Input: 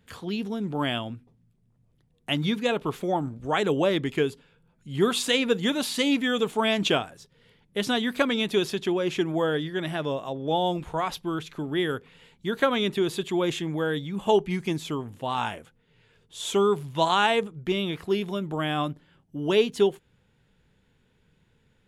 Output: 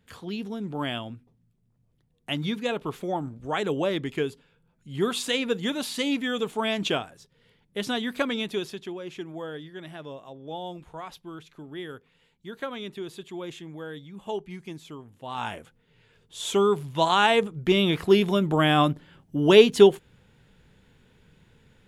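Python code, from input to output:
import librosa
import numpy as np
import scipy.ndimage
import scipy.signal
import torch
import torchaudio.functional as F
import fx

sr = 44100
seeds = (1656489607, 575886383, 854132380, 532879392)

y = fx.gain(x, sr, db=fx.line((8.36, -3.0), (8.97, -11.0), (15.15, -11.0), (15.56, 0.5), (17.07, 0.5), (17.95, 7.0)))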